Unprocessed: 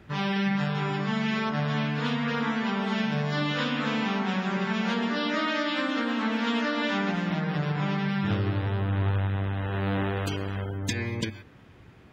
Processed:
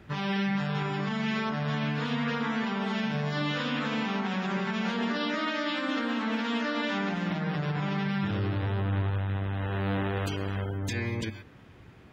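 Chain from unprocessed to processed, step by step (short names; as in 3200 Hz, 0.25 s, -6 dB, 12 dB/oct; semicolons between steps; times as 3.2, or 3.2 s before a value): limiter -21.5 dBFS, peak gain reduction 7.5 dB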